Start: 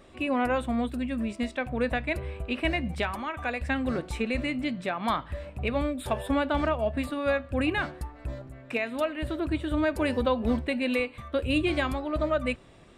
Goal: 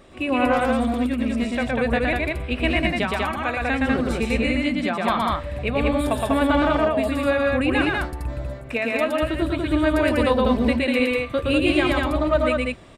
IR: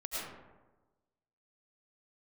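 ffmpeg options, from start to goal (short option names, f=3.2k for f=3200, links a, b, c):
-filter_complex "[0:a]asettb=1/sr,asplit=3[a][b][c];[a]atrim=end=0.534[d];[b]atrim=start=0.53:end=1.42,asetpts=PTS-STARTPTS,afade=t=in:d=0.004:c=qsin,afade=t=out:st=0.886:d=0.004:c=qsin,asoftclip=type=hard:threshold=-24dB[e];[c]atrim=start=1.416[f];[d][e]acrossfade=d=0.004:c1=hsin:c2=qsin[g];[g][f]acrossfade=d=0.004:c1=qsin:c2=hsin,asplit=2[h][i];[i]aecho=0:1:116.6|195.3:0.794|0.794[j];[h][j]amix=inputs=2:normalize=0,volume=4dB"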